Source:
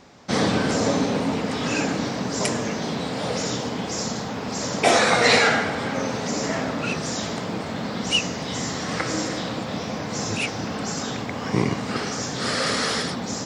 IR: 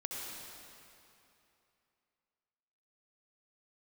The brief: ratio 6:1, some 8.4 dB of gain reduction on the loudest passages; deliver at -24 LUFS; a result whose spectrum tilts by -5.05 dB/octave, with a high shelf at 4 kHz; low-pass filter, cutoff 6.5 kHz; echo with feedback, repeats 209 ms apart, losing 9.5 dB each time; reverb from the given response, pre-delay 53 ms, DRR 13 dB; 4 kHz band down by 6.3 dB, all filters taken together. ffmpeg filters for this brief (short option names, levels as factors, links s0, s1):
-filter_complex "[0:a]lowpass=6500,highshelf=f=4000:g=-4.5,equalizer=f=4000:t=o:g=-5,acompressor=threshold=0.0708:ratio=6,aecho=1:1:209|418|627|836:0.335|0.111|0.0365|0.012,asplit=2[s0][s1];[1:a]atrim=start_sample=2205,adelay=53[s2];[s1][s2]afir=irnorm=-1:irlink=0,volume=0.188[s3];[s0][s3]amix=inputs=2:normalize=0,volume=1.58"